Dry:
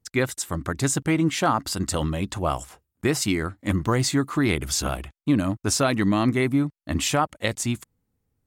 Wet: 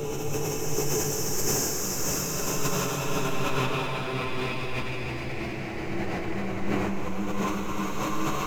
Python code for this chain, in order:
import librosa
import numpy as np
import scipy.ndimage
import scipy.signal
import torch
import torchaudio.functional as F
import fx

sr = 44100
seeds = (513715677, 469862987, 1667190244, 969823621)

p1 = fx.ripple_eq(x, sr, per_octave=0.75, db=17)
p2 = np.maximum(p1, 0.0)
p3 = p2 + fx.echo_alternate(p2, sr, ms=355, hz=1100.0, feedback_pct=68, wet_db=-3.0, dry=0)
p4 = fx.paulstretch(p3, sr, seeds[0], factor=16.0, window_s=0.25, from_s=5.63)
p5 = fx.sustainer(p4, sr, db_per_s=21.0)
y = p5 * 10.0 ** (-7.5 / 20.0)